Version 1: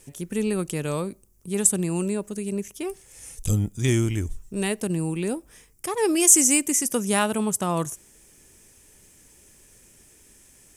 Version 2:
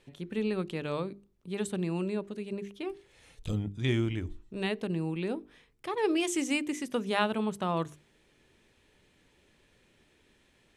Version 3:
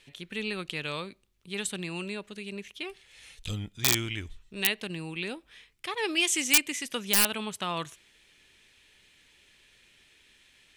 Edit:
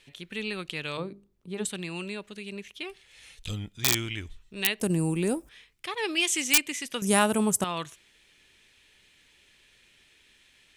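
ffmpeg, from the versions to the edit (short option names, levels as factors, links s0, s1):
-filter_complex "[0:a]asplit=2[s0][s1];[2:a]asplit=4[s2][s3][s4][s5];[s2]atrim=end=0.972[s6];[1:a]atrim=start=0.968:end=1.652[s7];[s3]atrim=start=1.648:end=4.802[s8];[s0]atrim=start=4.798:end=5.492[s9];[s4]atrim=start=5.488:end=7.022[s10];[s1]atrim=start=7.018:end=7.642[s11];[s5]atrim=start=7.638[s12];[s6][s7]acrossfade=d=0.004:c1=hsin:c2=hsin[s13];[s13][s8]acrossfade=d=0.004:c1=hsin:c2=hsin[s14];[s14][s9]acrossfade=d=0.004:c1=hsin:c2=hsin[s15];[s15][s10]acrossfade=d=0.004:c1=hsin:c2=hsin[s16];[s16][s11]acrossfade=d=0.004:c1=hsin:c2=hsin[s17];[s17][s12]acrossfade=d=0.004:c1=hsin:c2=hsin"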